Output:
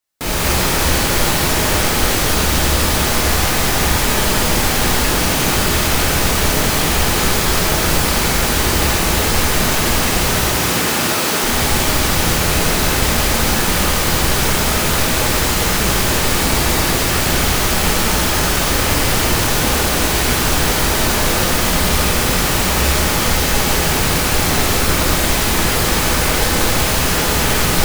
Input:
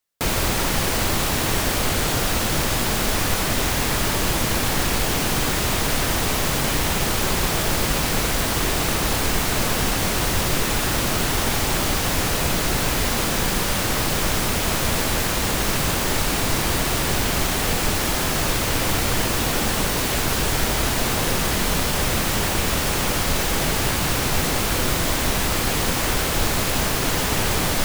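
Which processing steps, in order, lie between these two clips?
10.31–11.42 s: high-pass 72 Hz -> 260 Hz 12 dB/octave; gated-style reverb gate 310 ms flat, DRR -7.5 dB; trim -2 dB

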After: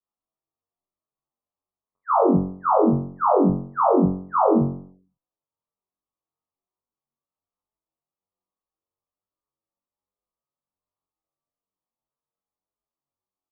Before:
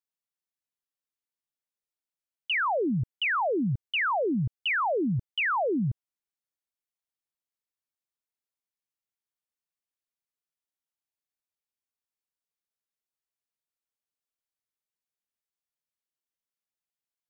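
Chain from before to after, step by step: steep low-pass 1 kHz 96 dB/octave; tape speed +28%; flutter echo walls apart 3.7 m, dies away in 0.54 s; endless flanger 7.9 ms +1.2 Hz; trim +9 dB

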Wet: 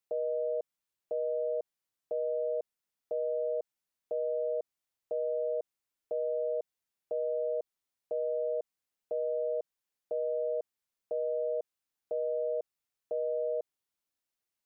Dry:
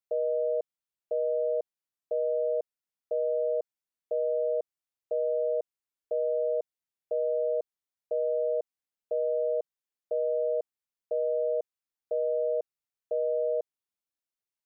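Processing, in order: peak limiter -29.5 dBFS, peak gain reduction 7.5 dB; trim +3.5 dB

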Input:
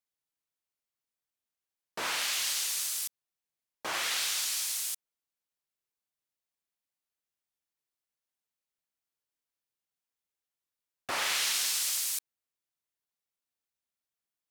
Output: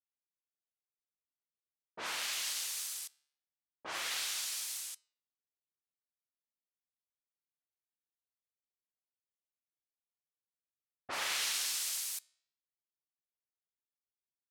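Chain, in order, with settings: level-controlled noise filter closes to 630 Hz, open at -29.5 dBFS; flange 0.21 Hz, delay 9.2 ms, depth 7.6 ms, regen -88%; upward expansion 1.5:1, over -48 dBFS

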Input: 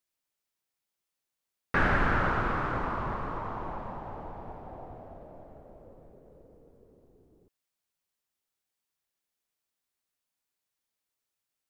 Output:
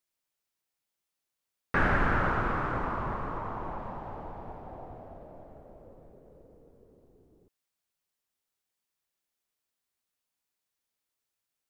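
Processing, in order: dynamic bell 4.2 kHz, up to -4 dB, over -51 dBFS, Q 0.95

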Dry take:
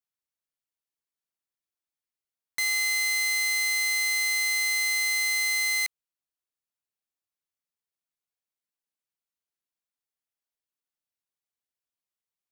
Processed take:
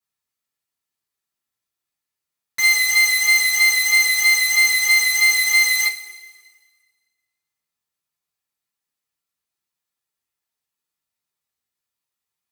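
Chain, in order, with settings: vibrato 3.1 Hz 21 cents; two-slope reverb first 0.23 s, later 1.6 s, from -19 dB, DRR -7 dB

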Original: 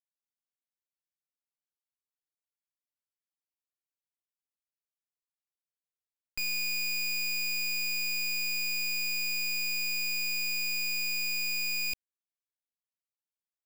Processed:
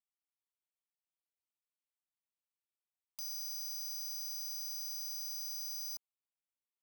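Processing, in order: static phaser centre 810 Hz, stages 6; level-controlled noise filter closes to 2.1 kHz; Bessel high-pass 230 Hz, order 2; hard clipper -40 dBFS, distortion -10 dB; careless resampling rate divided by 8×, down filtered, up zero stuff; speed mistake 7.5 ips tape played at 15 ips

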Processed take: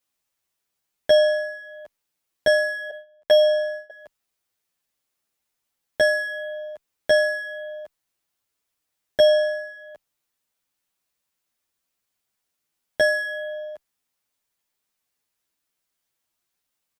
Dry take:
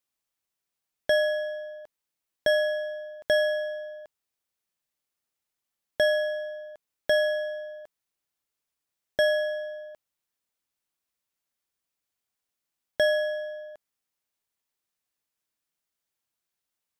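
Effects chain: 2.90–3.90 s: gate -35 dBFS, range -21 dB; endless flanger 9.3 ms +0.86 Hz; trim +8.5 dB

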